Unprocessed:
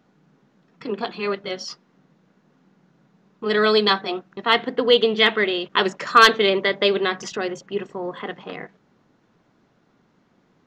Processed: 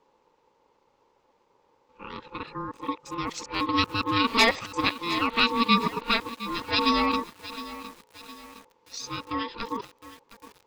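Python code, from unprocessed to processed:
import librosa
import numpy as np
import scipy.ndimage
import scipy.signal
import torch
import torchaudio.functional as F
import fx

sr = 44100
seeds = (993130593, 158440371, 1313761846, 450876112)

y = x[::-1].copy()
y = fx.peak_eq(y, sr, hz=1000.0, db=-9.5, octaves=1.5)
y = y * np.sin(2.0 * np.pi * 690.0 * np.arange(len(y)) / sr)
y = fx.echo_crushed(y, sr, ms=712, feedback_pct=55, bits=6, wet_db=-14.0)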